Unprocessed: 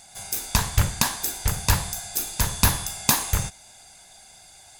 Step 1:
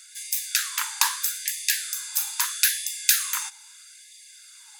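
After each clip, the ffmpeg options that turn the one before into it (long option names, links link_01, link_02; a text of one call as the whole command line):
ffmpeg -i in.wav -af "afftfilt=real='re*gte(b*sr/1024,800*pow(1700/800,0.5+0.5*sin(2*PI*0.78*pts/sr)))':imag='im*gte(b*sr/1024,800*pow(1700/800,0.5+0.5*sin(2*PI*0.78*pts/sr)))':win_size=1024:overlap=0.75,volume=1.5dB" out.wav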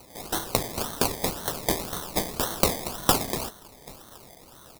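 ffmpeg -i in.wav -filter_complex "[0:a]asplit=2[link_01][link_02];[link_02]adelay=784,lowpass=frequency=3900:poles=1,volume=-17dB,asplit=2[link_03][link_04];[link_04]adelay=784,lowpass=frequency=3900:poles=1,volume=0.33,asplit=2[link_05][link_06];[link_06]adelay=784,lowpass=frequency=3900:poles=1,volume=0.33[link_07];[link_01][link_03][link_05][link_07]amix=inputs=4:normalize=0,acrusher=samples=25:mix=1:aa=0.000001:lfo=1:lforange=15:lforate=1.9,aexciter=amount=3.1:drive=4:freq=3800,volume=-3.5dB" out.wav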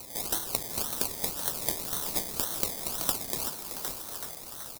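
ffmpeg -i in.wav -filter_complex "[0:a]asplit=6[link_01][link_02][link_03][link_04][link_05][link_06];[link_02]adelay=378,afreqshift=130,volume=-17dB[link_07];[link_03]adelay=756,afreqshift=260,volume=-22.2dB[link_08];[link_04]adelay=1134,afreqshift=390,volume=-27.4dB[link_09];[link_05]adelay=1512,afreqshift=520,volume=-32.6dB[link_10];[link_06]adelay=1890,afreqshift=650,volume=-37.8dB[link_11];[link_01][link_07][link_08][link_09][link_10][link_11]amix=inputs=6:normalize=0,acompressor=threshold=-35dB:ratio=4,highshelf=frequency=4000:gain=11" out.wav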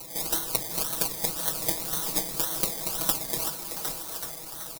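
ffmpeg -i in.wav -af "aecho=1:1:6.2:1" out.wav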